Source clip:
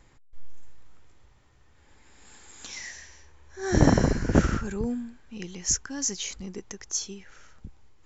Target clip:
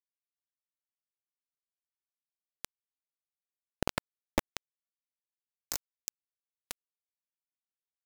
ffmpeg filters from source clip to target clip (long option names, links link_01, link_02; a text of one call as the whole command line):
ffmpeg -i in.wav -af "areverse,acompressor=threshold=-42dB:ratio=4,areverse,acrusher=bits=4:mix=0:aa=0.000001,volume=11dB" out.wav